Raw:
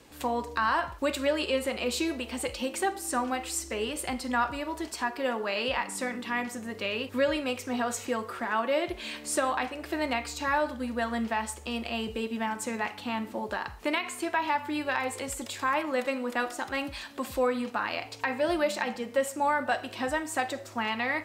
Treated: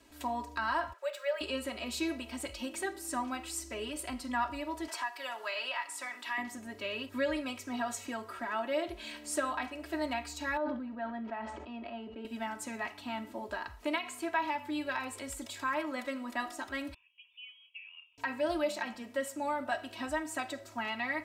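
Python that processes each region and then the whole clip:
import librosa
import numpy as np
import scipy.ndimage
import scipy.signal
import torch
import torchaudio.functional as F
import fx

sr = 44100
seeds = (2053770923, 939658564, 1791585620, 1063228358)

y = fx.chain(x, sr, fx.cheby_ripple_highpass(hz=400.0, ripple_db=6),
    fx.resample_linear(factor=2), at=(0.93, 1.41))
y = fx.chain(y, sr, fx.highpass(hz=760.0, slope=12),
    fx.band_squash(depth_pct=70), at=(4.88, 6.38))
y = fx.chain(y, sr, fx.highpass(hz=190.0, slope=12),
    fx.spacing_loss(db_at_10k=42),
    fx.sustainer(db_per_s=30.0), at=(10.57, 12.25))
y = fx.chain(y, sr, fx.formant_cascade(vowel='a'),
    fx.freq_invert(carrier_hz=3500), at=(16.94, 18.18))
y = fx.notch(y, sr, hz=360.0, q=12.0)
y = y + 0.81 * np.pad(y, (int(3.1 * sr / 1000.0), 0))[:len(y)]
y = F.gain(torch.from_numpy(y), -8.0).numpy()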